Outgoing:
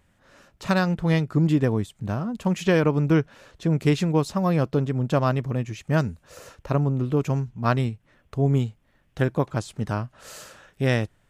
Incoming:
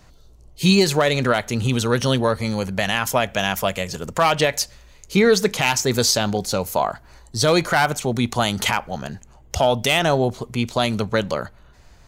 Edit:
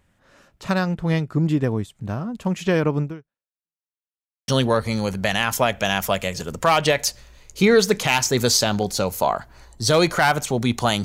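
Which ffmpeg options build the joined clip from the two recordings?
ffmpeg -i cue0.wav -i cue1.wav -filter_complex "[0:a]apad=whole_dur=11.04,atrim=end=11.04,asplit=2[link_01][link_02];[link_01]atrim=end=3.78,asetpts=PTS-STARTPTS,afade=type=out:start_time=3.02:duration=0.76:curve=exp[link_03];[link_02]atrim=start=3.78:end=4.48,asetpts=PTS-STARTPTS,volume=0[link_04];[1:a]atrim=start=2.02:end=8.58,asetpts=PTS-STARTPTS,afade=type=in:duration=0.004:curve=hsin[link_05];[link_03][link_04][link_05]concat=n=3:v=0:a=1" out.wav

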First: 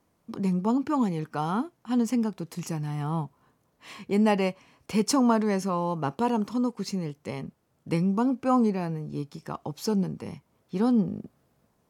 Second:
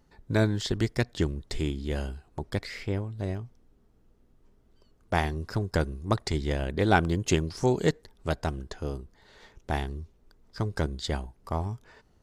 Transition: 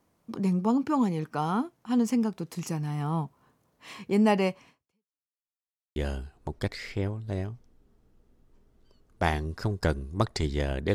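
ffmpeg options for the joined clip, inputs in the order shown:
ffmpeg -i cue0.wav -i cue1.wav -filter_complex "[0:a]apad=whole_dur=10.94,atrim=end=10.94,asplit=2[link_01][link_02];[link_01]atrim=end=5.21,asetpts=PTS-STARTPTS,afade=type=out:start_time=4.69:duration=0.52:curve=exp[link_03];[link_02]atrim=start=5.21:end=5.96,asetpts=PTS-STARTPTS,volume=0[link_04];[1:a]atrim=start=1.87:end=6.85,asetpts=PTS-STARTPTS,afade=type=in:duration=0.004:curve=hsin[link_05];[link_03][link_04][link_05]concat=n=3:v=0:a=1" out.wav

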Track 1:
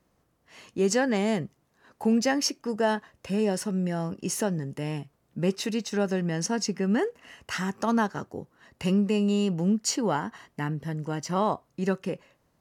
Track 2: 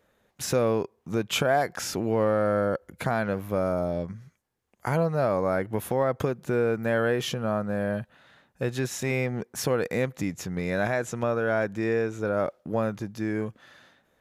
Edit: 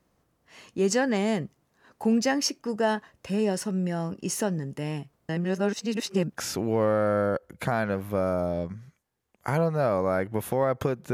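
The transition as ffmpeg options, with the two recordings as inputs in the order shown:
ffmpeg -i cue0.wav -i cue1.wav -filter_complex "[0:a]apad=whole_dur=11.13,atrim=end=11.13,asplit=2[link_01][link_02];[link_01]atrim=end=5.292[link_03];[link_02]atrim=start=5.288:end=6.372,asetpts=PTS-STARTPTS,areverse[link_04];[1:a]atrim=start=1.758:end=6.52[link_05];[link_03][link_04]acrossfade=duration=0.004:curve1=hsin:curve2=hsin[link_06];[link_06][link_05]acrossfade=duration=0.004:curve1=hsin:curve2=hsin" out.wav

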